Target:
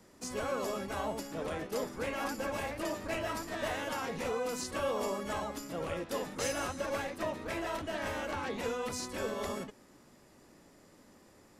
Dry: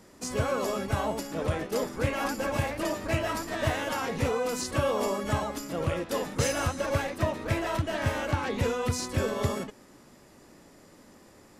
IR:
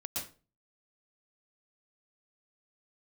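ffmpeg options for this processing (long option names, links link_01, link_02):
-filter_complex "[0:a]acrossover=split=360|1500|2300[link_01][link_02][link_03][link_04];[link_01]aeval=exprs='0.0251*(abs(mod(val(0)/0.0251+3,4)-2)-1)':channel_layout=same[link_05];[link_05][link_02][link_03][link_04]amix=inputs=4:normalize=0,volume=-5.5dB"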